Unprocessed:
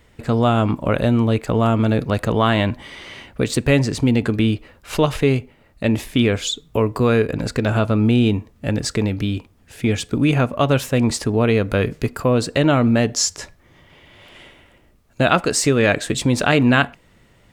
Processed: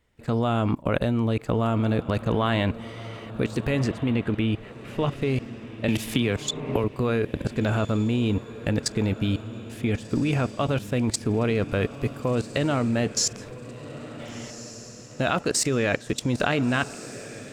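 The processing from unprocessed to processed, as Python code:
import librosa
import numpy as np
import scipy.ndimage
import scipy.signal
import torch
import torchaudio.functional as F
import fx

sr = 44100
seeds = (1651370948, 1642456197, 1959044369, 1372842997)

y = fx.high_shelf_res(x, sr, hz=3700.0, db=-6.5, q=1.5, at=(3.84, 5.16))
y = fx.level_steps(y, sr, step_db=23)
y = fx.echo_diffused(y, sr, ms=1469, feedback_pct=44, wet_db=-14)
y = fx.band_squash(y, sr, depth_pct=100, at=(5.88, 6.84))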